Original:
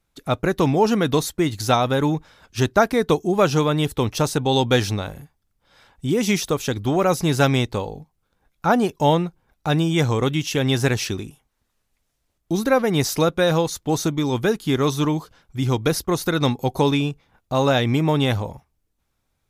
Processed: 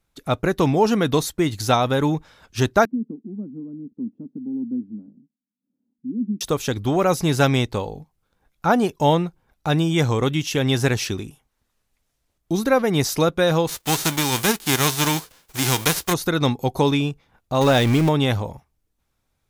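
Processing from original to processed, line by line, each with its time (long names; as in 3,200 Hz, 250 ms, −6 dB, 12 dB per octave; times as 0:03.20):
0:02.85–0:06.41: flat-topped band-pass 240 Hz, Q 3.6
0:13.67–0:16.12: spectral envelope flattened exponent 0.3
0:17.61–0:18.09: converter with a step at zero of −22 dBFS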